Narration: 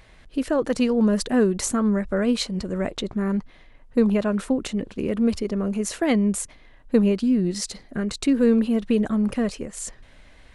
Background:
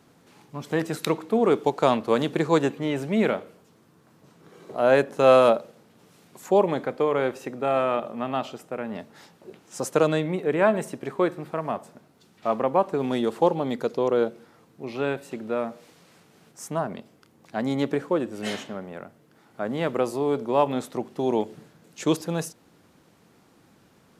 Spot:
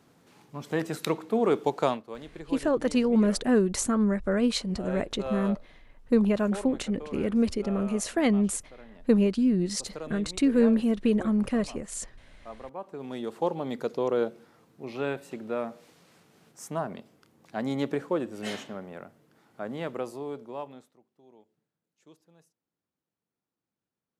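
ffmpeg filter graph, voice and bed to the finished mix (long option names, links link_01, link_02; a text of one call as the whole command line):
ffmpeg -i stem1.wav -i stem2.wav -filter_complex "[0:a]adelay=2150,volume=-3dB[link_01];[1:a]volume=11dB,afade=type=out:start_time=1.82:duration=0.21:silence=0.177828,afade=type=in:start_time=12.76:duration=1.14:silence=0.188365,afade=type=out:start_time=19.18:duration=1.79:silence=0.0354813[link_02];[link_01][link_02]amix=inputs=2:normalize=0" out.wav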